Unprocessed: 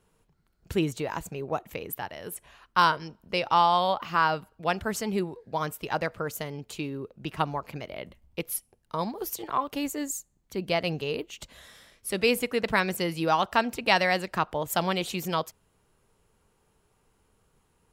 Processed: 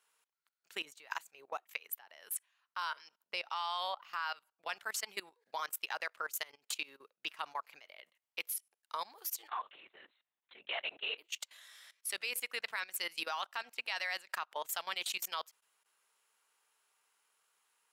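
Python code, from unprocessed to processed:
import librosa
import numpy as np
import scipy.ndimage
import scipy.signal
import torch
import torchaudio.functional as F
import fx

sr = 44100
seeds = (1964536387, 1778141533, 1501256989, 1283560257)

y = fx.harmonic_tremolo(x, sr, hz=1.6, depth_pct=50, crossover_hz=960.0, at=(0.85, 4.69))
y = fx.lpc_vocoder(y, sr, seeds[0], excitation='whisper', order=10, at=(9.49, 11.18))
y = scipy.signal.sosfilt(scipy.signal.butter(2, 1300.0, 'highpass', fs=sr, output='sos'), y)
y = fx.transient(y, sr, attack_db=3, sustain_db=-4)
y = fx.level_steps(y, sr, step_db=20)
y = y * librosa.db_to_amplitude(3.0)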